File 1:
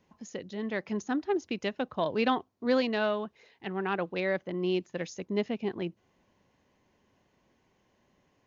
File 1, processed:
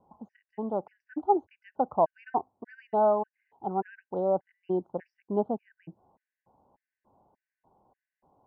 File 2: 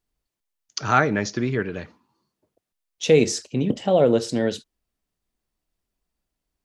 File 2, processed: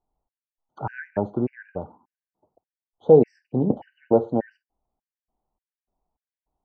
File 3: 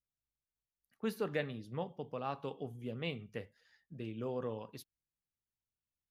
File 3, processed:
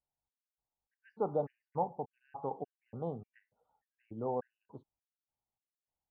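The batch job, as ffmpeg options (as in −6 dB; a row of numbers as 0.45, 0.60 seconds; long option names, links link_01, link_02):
-af "lowpass=frequency=830:width_type=q:width=5,aemphasis=mode=reproduction:type=50kf,afftfilt=real='re*gt(sin(2*PI*1.7*pts/sr)*(1-2*mod(floor(b*sr/1024/1500),2)),0)':imag='im*gt(sin(2*PI*1.7*pts/sr)*(1-2*mod(floor(b*sr/1024/1500),2)),0)':win_size=1024:overlap=0.75"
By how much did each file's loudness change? +1.5, −0.5, +2.0 LU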